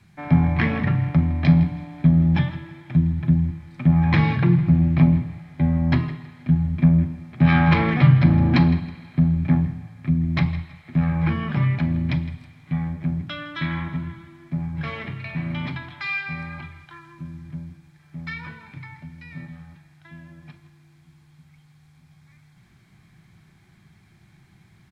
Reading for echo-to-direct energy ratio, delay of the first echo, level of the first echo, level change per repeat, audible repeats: -15.5 dB, 0.161 s, -16.0 dB, -9.5 dB, 2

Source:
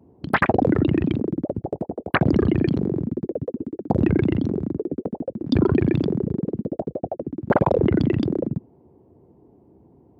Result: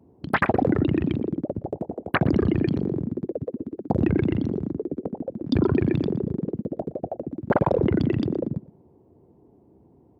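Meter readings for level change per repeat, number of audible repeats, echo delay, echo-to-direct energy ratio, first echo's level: -11.5 dB, 2, 0.118 s, -19.5 dB, -20.0 dB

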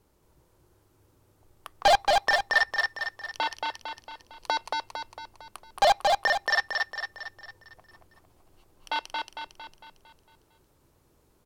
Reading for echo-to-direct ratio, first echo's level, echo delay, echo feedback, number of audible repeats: -1.5 dB, -3.0 dB, 0.227 s, 51%, 6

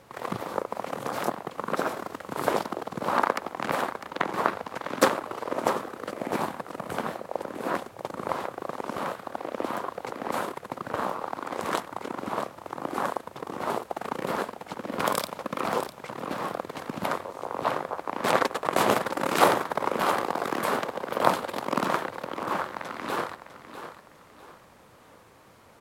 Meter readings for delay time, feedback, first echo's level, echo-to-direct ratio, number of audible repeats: 0.652 s, 34%, -11.5 dB, -11.0 dB, 3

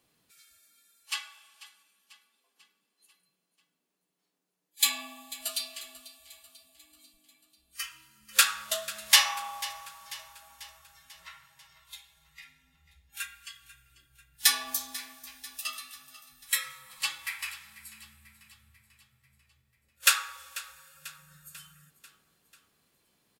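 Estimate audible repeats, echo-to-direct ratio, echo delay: 4, -16.0 dB, 0.492 s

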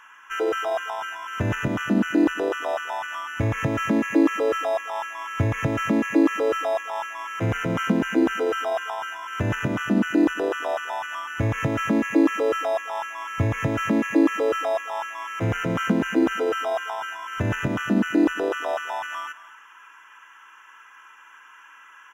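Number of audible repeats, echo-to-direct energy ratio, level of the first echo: 2, -16.5 dB, -16.5 dB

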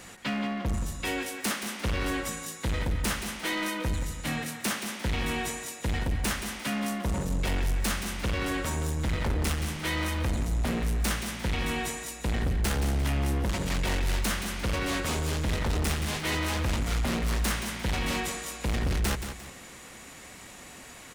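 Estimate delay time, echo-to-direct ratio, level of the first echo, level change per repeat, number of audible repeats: 0.175 s, -8.5 dB, -9.0 dB, -8.5 dB, 2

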